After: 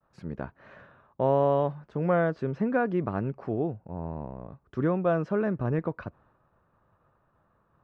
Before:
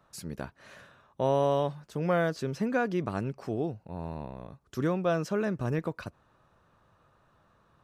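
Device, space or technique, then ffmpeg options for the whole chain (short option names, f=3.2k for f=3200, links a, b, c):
hearing-loss simulation: -filter_complex "[0:a]lowpass=1.7k,agate=range=-33dB:threshold=-60dB:ratio=3:detection=peak,asettb=1/sr,asplit=3[a][b][c];[a]atrim=end=3.764[d];[b]atrim=start=3.76:end=4.49,asetpts=PTS-STARTPTS,afade=t=in:d=0.004:c=qsin,afade=t=out:st=0.726:d=0.004:c=qsin,lowpass=f=1.5k:p=1[e];[c]atrim=start=4.486[f];[d][e]acrossfade=d=0.004:c1=hsin:c2=qsin[g];[g][f]acrossfade=d=0.004:c1=qsin:c2=hsin,volume=2.5dB"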